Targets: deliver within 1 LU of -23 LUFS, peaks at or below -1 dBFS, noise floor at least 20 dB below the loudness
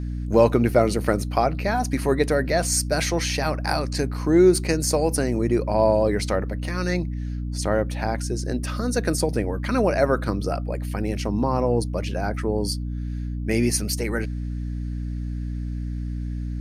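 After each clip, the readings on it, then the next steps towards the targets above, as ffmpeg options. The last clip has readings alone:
hum 60 Hz; harmonics up to 300 Hz; hum level -26 dBFS; loudness -23.5 LUFS; peak -4.0 dBFS; loudness target -23.0 LUFS
-> -af "bandreject=f=60:t=h:w=4,bandreject=f=120:t=h:w=4,bandreject=f=180:t=h:w=4,bandreject=f=240:t=h:w=4,bandreject=f=300:t=h:w=4"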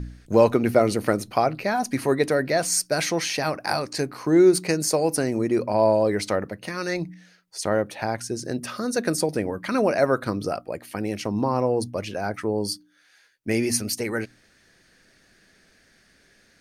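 hum none; loudness -24.0 LUFS; peak -4.5 dBFS; loudness target -23.0 LUFS
-> -af "volume=1dB"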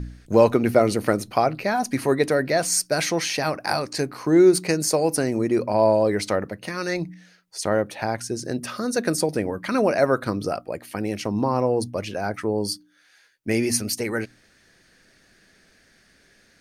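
loudness -23.0 LUFS; peak -3.5 dBFS; noise floor -59 dBFS

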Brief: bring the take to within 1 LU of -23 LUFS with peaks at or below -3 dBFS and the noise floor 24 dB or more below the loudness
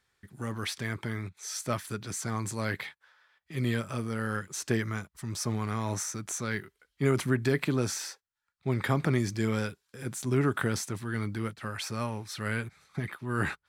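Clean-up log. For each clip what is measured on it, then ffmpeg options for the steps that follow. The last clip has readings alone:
loudness -32.0 LUFS; peak -12.5 dBFS; loudness target -23.0 LUFS
-> -af "volume=9dB"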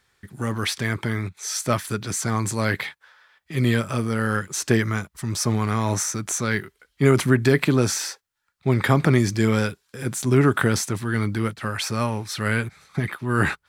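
loudness -23.0 LUFS; peak -3.5 dBFS; noise floor -72 dBFS

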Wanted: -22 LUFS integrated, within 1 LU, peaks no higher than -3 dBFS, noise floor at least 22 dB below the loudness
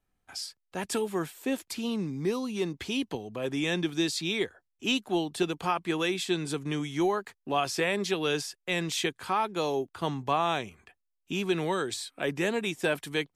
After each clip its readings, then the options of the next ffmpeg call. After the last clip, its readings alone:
loudness -30.5 LUFS; peak -13.5 dBFS; loudness target -22.0 LUFS
-> -af "volume=8.5dB"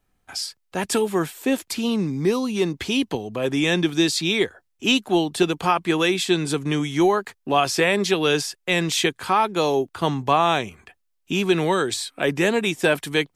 loudness -22.0 LUFS; peak -5.0 dBFS; noise floor -71 dBFS

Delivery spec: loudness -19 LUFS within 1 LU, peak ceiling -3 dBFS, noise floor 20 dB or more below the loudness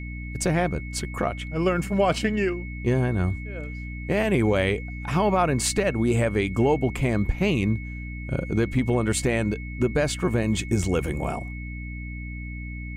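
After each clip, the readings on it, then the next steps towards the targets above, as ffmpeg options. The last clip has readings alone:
hum 60 Hz; harmonics up to 300 Hz; hum level -32 dBFS; steady tone 2200 Hz; tone level -40 dBFS; loudness -25.0 LUFS; peak -10.0 dBFS; loudness target -19.0 LUFS
-> -af "bandreject=f=60:t=h:w=4,bandreject=f=120:t=h:w=4,bandreject=f=180:t=h:w=4,bandreject=f=240:t=h:w=4,bandreject=f=300:t=h:w=4"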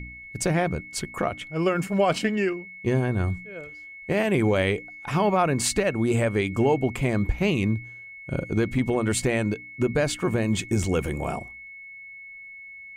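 hum none; steady tone 2200 Hz; tone level -40 dBFS
-> -af "bandreject=f=2.2k:w=30"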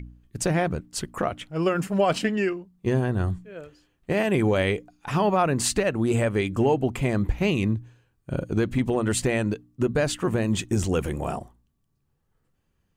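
steady tone none; loudness -25.0 LUFS; peak -10.5 dBFS; loudness target -19.0 LUFS
-> -af "volume=6dB"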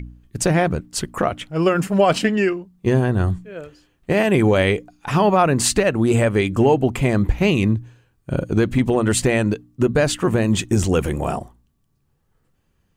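loudness -19.0 LUFS; peak -4.5 dBFS; noise floor -67 dBFS

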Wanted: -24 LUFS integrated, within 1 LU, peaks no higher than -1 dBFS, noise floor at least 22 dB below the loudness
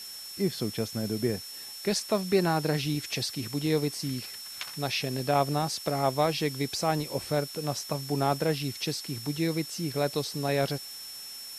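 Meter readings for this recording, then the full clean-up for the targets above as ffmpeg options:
steady tone 5400 Hz; tone level -41 dBFS; noise floor -42 dBFS; noise floor target -52 dBFS; loudness -30.0 LUFS; peak -11.0 dBFS; loudness target -24.0 LUFS
-> -af "bandreject=f=5.4k:w=30"
-af "afftdn=nr=10:nf=-42"
-af "volume=6dB"

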